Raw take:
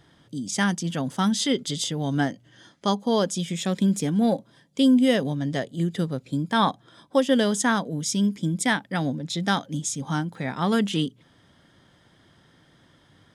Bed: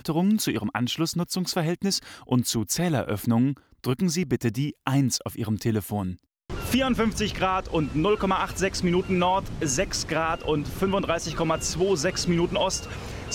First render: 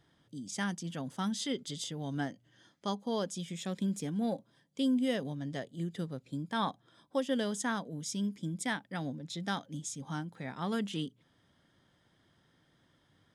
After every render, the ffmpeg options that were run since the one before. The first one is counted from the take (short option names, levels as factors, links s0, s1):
-af "volume=0.266"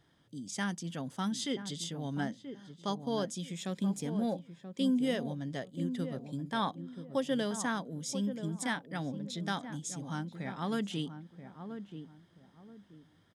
-filter_complex "[0:a]asplit=2[s0][s1];[s1]adelay=981,lowpass=f=860:p=1,volume=0.376,asplit=2[s2][s3];[s3]adelay=981,lowpass=f=860:p=1,volume=0.31,asplit=2[s4][s5];[s5]adelay=981,lowpass=f=860:p=1,volume=0.31,asplit=2[s6][s7];[s7]adelay=981,lowpass=f=860:p=1,volume=0.31[s8];[s0][s2][s4][s6][s8]amix=inputs=5:normalize=0"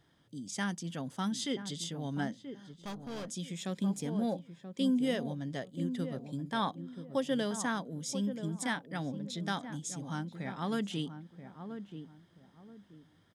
-filter_complex "[0:a]asettb=1/sr,asplit=3[s0][s1][s2];[s0]atrim=end=2.734[s3];[s1]atrim=start=2.73:end=3.29,asetpts=PTS-STARTPTS,afade=t=in:d=0.004:c=qsin,afade=t=out:st=0.556:d=0.004:c=qsin,aeval=exprs='(tanh(79.4*val(0)+0.3)-tanh(0.3))/79.4':c=same[s4];[s2]atrim=start=3.286[s5];[s3][s4]acrossfade=d=0.004:c1=hsin:c2=qsin[s6];[s6][s5]acrossfade=d=0.004:c1=qsin:c2=hsin"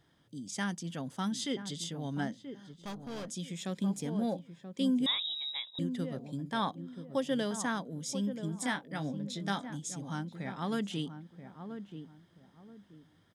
-filter_complex "[0:a]asettb=1/sr,asplit=3[s0][s1][s2];[s0]atrim=end=5.064[s3];[s1]atrim=start=5.06:end=5.79,asetpts=PTS-STARTPTS,afade=t=in:d=0.004:c=qsin,afade=t=out:st=0.726:d=0.004:c=qsin,lowpass=f=3400:t=q:w=0.5098,lowpass=f=3400:t=q:w=0.6013,lowpass=f=3400:t=q:w=0.9,lowpass=f=3400:t=q:w=2.563,afreqshift=-4000[s4];[s2]atrim=start=5.786[s5];[s3][s4]acrossfade=d=0.004:c1=hsin:c2=qsin[s6];[s6][s5]acrossfade=d=0.004:c1=qsin:c2=hsin,asettb=1/sr,asplit=3[s7][s8][s9];[s7]atrim=end=8.504[s10];[s8]atrim=start=8.5:end=9.7,asetpts=PTS-STARTPTS,afade=t=in:d=0.004:c=qsin,afade=t=out:st=1.196:d=0.004:c=qsin,asplit=2[s11][s12];[s12]adelay=20,volume=0.335[s13];[s11][s13]amix=inputs=2:normalize=0,atrim=end_sample=52920[s14];[s9]atrim=start=9.696[s15];[s10][s14]acrossfade=d=0.004:c1=hsin:c2=qsin[s16];[s16][s15]acrossfade=d=0.004:c1=qsin:c2=hsin"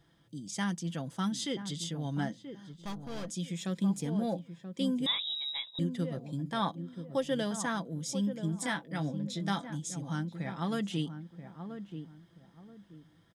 -af "lowshelf=f=93:g=6,aecho=1:1:6:0.38"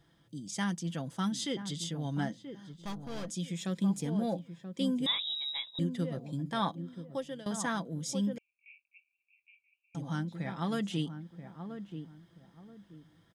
-filter_complex "[0:a]asettb=1/sr,asplit=3[s0][s1][s2];[s0]atrim=end=8.384[s3];[s1]atrim=start=8.38:end=9.95,asetpts=PTS-STARTPTS,afade=t=in:d=0.004:c=qsin,afade=t=out:st=1.566:d=0.004:c=qsin,asuperpass=centerf=2500:order=12:qfactor=4.9[s4];[s2]atrim=start=9.946[s5];[s3][s4]acrossfade=d=0.004:c1=hsin:c2=qsin[s6];[s6][s5]acrossfade=d=0.004:c1=qsin:c2=hsin,asplit=2[s7][s8];[s7]atrim=end=7.46,asetpts=PTS-STARTPTS,afade=t=out:st=6.88:d=0.58:silence=0.11885[s9];[s8]atrim=start=7.46,asetpts=PTS-STARTPTS,afade=t=in:d=0.004:c=hsin:silence=0.11885[s10];[s9][s10]concat=n=2:v=0:a=1"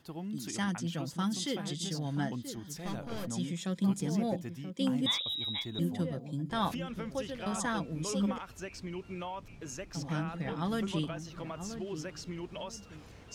-filter_complex "[1:a]volume=0.133[s0];[0:a][s0]amix=inputs=2:normalize=0"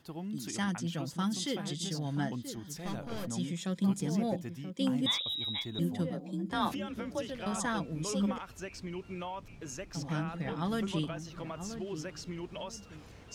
-filter_complex "[0:a]asettb=1/sr,asplit=3[s0][s1][s2];[s0]atrim=end=6.104[s3];[s1]atrim=start=6.1:end=7.3,asetpts=PTS-STARTPTS,afade=t=in:d=0.004:c=qsin,afade=t=out:st=1.196:d=0.004:c=qsin,afreqshift=35[s4];[s2]atrim=start=7.296[s5];[s3][s4]acrossfade=d=0.004:c1=hsin:c2=qsin[s6];[s6][s5]acrossfade=d=0.004:c1=qsin:c2=hsin"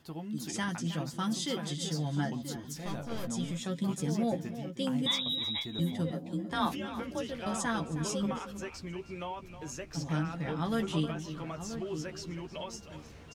-filter_complex "[0:a]asplit=2[s0][s1];[s1]adelay=13,volume=0.447[s2];[s0][s2]amix=inputs=2:normalize=0,asplit=2[s3][s4];[s4]adelay=314.9,volume=0.251,highshelf=f=4000:g=-7.08[s5];[s3][s5]amix=inputs=2:normalize=0"